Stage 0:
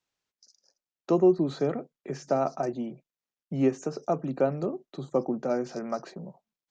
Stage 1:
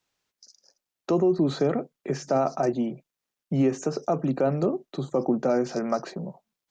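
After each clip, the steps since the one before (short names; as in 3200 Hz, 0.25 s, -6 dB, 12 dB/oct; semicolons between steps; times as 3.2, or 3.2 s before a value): limiter -20.5 dBFS, peak gain reduction 9 dB; gain +6.5 dB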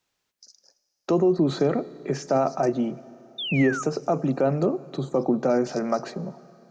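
Schroeder reverb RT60 3.1 s, combs from 29 ms, DRR 18 dB; painted sound fall, 3.38–3.83, 1200–3700 Hz -32 dBFS; gain +1.5 dB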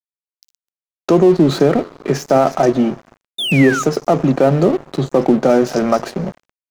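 in parallel at -2 dB: limiter -21.5 dBFS, peak gain reduction 10.5 dB; on the sum: crossover distortion -35.5 dBFS; gain +8 dB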